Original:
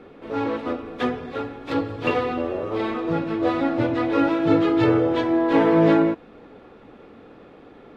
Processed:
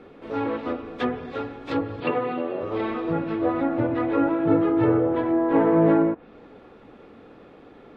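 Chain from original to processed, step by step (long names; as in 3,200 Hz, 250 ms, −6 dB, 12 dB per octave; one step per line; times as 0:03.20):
0:02.00–0:02.61: Chebyshev band-pass filter 120–4,500 Hz, order 5
treble cut that deepens with the level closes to 1,500 Hz, closed at −17.5 dBFS
level −1.5 dB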